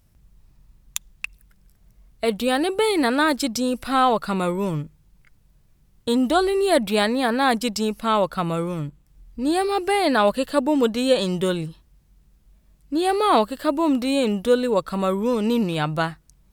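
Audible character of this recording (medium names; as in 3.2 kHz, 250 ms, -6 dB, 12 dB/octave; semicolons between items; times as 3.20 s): noise floor -59 dBFS; spectral tilt -4.0 dB/octave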